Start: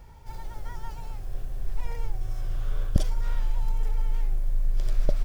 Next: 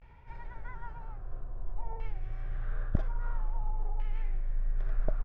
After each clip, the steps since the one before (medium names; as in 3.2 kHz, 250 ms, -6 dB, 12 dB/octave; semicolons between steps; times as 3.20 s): vibrato 0.45 Hz 86 cents; LFO low-pass saw down 0.5 Hz 860–2500 Hz; trim -6.5 dB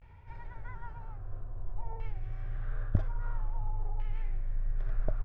peaking EQ 94 Hz +10.5 dB 0.41 oct; trim -1.5 dB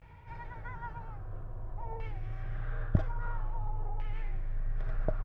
high-pass 56 Hz 6 dB/octave; comb 6.3 ms, depth 31%; trim +4 dB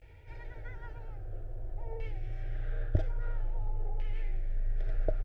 static phaser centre 440 Hz, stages 4; trim +2.5 dB